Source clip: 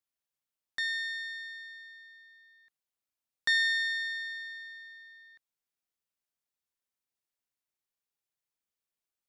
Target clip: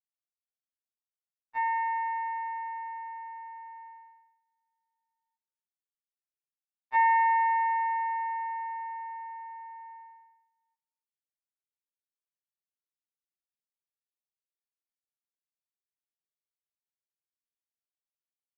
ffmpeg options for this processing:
ffmpeg -i in.wav -af "asetrate=22050,aresample=44100,highpass=620,lowpass=2500,aecho=1:1:291:0.0794,agate=range=-28dB:threshold=-52dB:ratio=16:detection=peak,afftfilt=real='re*2.45*eq(mod(b,6),0)':imag='im*2.45*eq(mod(b,6),0)':win_size=2048:overlap=0.75" out.wav

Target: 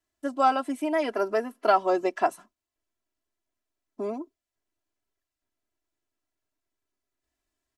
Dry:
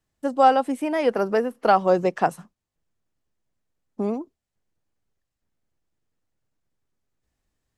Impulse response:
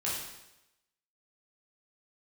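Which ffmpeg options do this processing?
-af "lowshelf=frequency=190:gain=-11,aecho=1:1:3:0.86,volume=-4.5dB"

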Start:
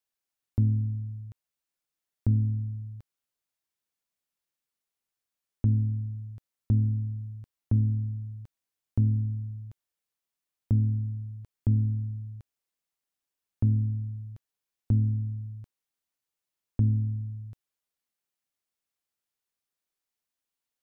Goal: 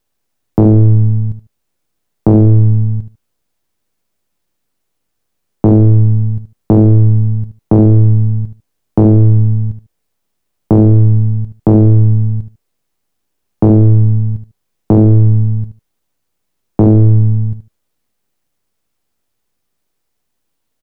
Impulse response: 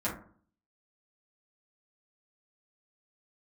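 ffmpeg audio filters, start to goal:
-af "aeval=exprs='if(lt(val(0),0),0.251*val(0),val(0))':channel_layout=same,tiltshelf=frequency=670:gain=6,aecho=1:1:75|150:0.266|0.0452,aeval=exprs='0.316*sin(PI/2*2.82*val(0)/0.316)':channel_layout=same,volume=8.5dB"

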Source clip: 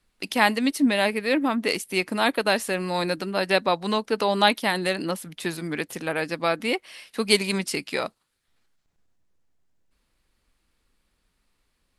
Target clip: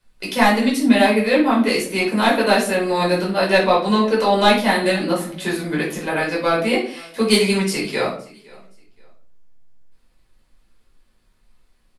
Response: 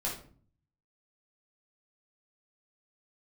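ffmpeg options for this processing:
-filter_complex "[0:a]asplit=2[link_01][link_02];[link_02]aeval=exprs='0.75*sin(PI/2*2*val(0)/0.75)':channel_layout=same,volume=-12dB[link_03];[link_01][link_03]amix=inputs=2:normalize=0,aecho=1:1:517|1034:0.0631|0.0177[link_04];[1:a]atrim=start_sample=2205,afade=type=out:start_time=0.34:duration=0.01,atrim=end_sample=15435[link_05];[link_04][link_05]afir=irnorm=-1:irlink=0,volume=-3dB"

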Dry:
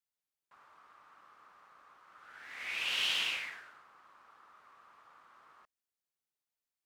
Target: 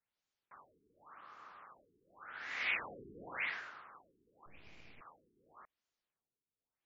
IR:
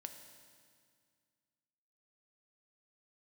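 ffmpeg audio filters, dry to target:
-filter_complex "[0:a]asettb=1/sr,asplit=3[link_01][link_02][link_03];[link_01]atrim=end=4.464[link_04];[link_02]atrim=start=4.46:end=5.01,asetpts=PTS-STARTPTS,afade=type=in:duration=0.004:curve=qsin,afade=type=out:start_time=0.546:duration=0.004:curve=qsin,aeval=exprs='abs(val(0))':channel_layout=same[link_05];[link_03]atrim=start=5.006[link_06];[link_04][link_05]acrossfade=duration=0.004:curve1=hsin:curve2=qsin[link_07];[link_07][link_06]acrossfade=duration=0.004:curve1=qsin:curve2=hsin,afftfilt=real='re*lt(b*sr/1024,440*pow(7500/440,0.5+0.5*sin(2*PI*0.89*pts/sr)))':imag='im*lt(b*sr/1024,440*pow(7500/440,0.5+0.5*sin(2*PI*0.89*pts/sr)))':win_size=1024:overlap=0.75,volume=5dB"

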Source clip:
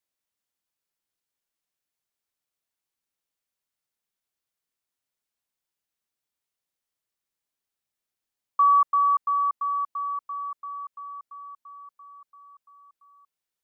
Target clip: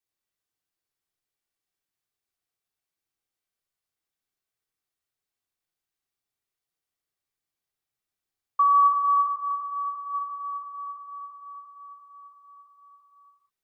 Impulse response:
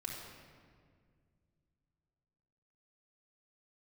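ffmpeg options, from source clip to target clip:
-filter_complex "[0:a]asplit=3[link_01][link_02][link_03];[link_01]afade=type=out:start_time=9.35:duration=0.02[link_04];[link_02]highpass=frequency=1100:poles=1,afade=type=in:start_time=9.35:duration=0.02,afade=type=out:start_time=10.13:duration=0.02[link_05];[link_03]afade=type=in:start_time=10.13:duration=0.02[link_06];[link_04][link_05][link_06]amix=inputs=3:normalize=0[link_07];[1:a]atrim=start_sample=2205,afade=type=out:start_time=0.3:duration=0.01,atrim=end_sample=13671[link_08];[link_07][link_08]afir=irnorm=-1:irlink=0"

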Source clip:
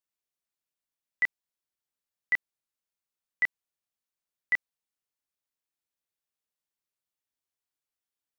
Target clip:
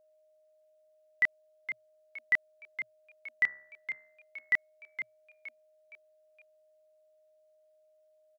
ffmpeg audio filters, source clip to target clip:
ffmpeg -i in.wav -filter_complex "[0:a]asettb=1/sr,asplit=3[link_01][link_02][link_03];[link_01]atrim=end=3.444[link_04];[link_02]atrim=start=3.44:end=4.54,asetpts=PTS-STARTPTS,afade=type=in:duration=0.004:curve=qsin,afade=type=out:start_time=1.096:duration=0.004:curve=qsin,bandreject=frequency=67.85:width_type=h:width=4,bandreject=frequency=135.7:width_type=h:width=4,bandreject=frequency=203.55:width_type=h:width=4,bandreject=frequency=271.4:width_type=h:width=4,bandreject=frequency=339.25:width_type=h:width=4,bandreject=frequency=407.1:width_type=h:width=4,bandreject=frequency=474.95:width_type=h:width=4,bandreject=frequency=542.8:width_type=h:width=4,bandreject=frequency=610.65:width_type=h:width=4,bandreject=frequency=678.5:width_type=h:width=4,bandreject=frequency=746.35:width_type=h:width=4,bandreject=frequency=814.2:width_type=h:width=4,bandreject=frequency=882.05:width_type=h:width=4,bandreject=frequency=949.9:width_type=h:width=4,bandreject=frequency=1017.75:width_type=h:width=4,bandreject=frequency=1085.6:width_type=h:width=4,bandreject=frequency=1153.45:width_type=h:width=4,bandreject=frequency=1221.3:width_type=h:width=4,bandreject=frequency=1289.15:width_type=h:width=4,bandreject=frequency=1357:width_type=h:width=4,bandreject=frequency=1424.85:width_type=h:width=4,bandreject=frequency=1492.7:width_type=h:width=4,bandreject=frequency=1560.55:width_type=h:width=4,bandreject=frequency=1628.4:width_type=h:width=4,bandreject=frequency=1696.25:width_type=h:width=4,bandreject=frequency=1764.1:width_type=h:width=4,bandreject=frequency=1831.95:width_type=h:width=4,bandreject=frequency=1899.8:width_type=h:width=4,bandreject=frequency=1967.65:width_type=h:width=4[link_05];[link_03]atrim=start=4.536[link_06];[link_04][link_05]acrossfade=duration=0.004:curve1=hsin:curve2=qsin[link_07];[link_07][link_06]acrossfade=duration=0.004:curve1=qsin:curve2=hsin,asplit=5[link_08][link_09][link_10][link_11][link_12];[link_09]adelay=466,afreqshift=110,volume=-10dB[link_13];[link_10]adelay=932,afreqshift=220,volume=-18.2dB[link_14];[link_11]adelay=1398,afreqshift=330,volume=-26.4dB[link_15];[link_12]adelay=1864,afreqshift=440,volume=-34.5dB[link_16];[link_08][link_13][link_14][link_15][link_16]amix=inputs=5:normalize=0,aeval=exprs='val(0)+0.000631*sin(2*PI*620*n/s)':channel_layout=same" out.wav

